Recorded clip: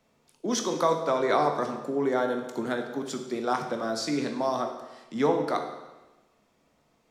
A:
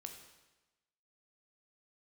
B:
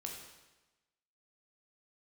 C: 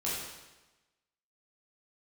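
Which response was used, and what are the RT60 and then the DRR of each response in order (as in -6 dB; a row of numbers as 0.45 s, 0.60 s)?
A; 1.1 s, 1.1 s, 1.1 s; 4.0 dB, 0.0 dB, -8.0 dB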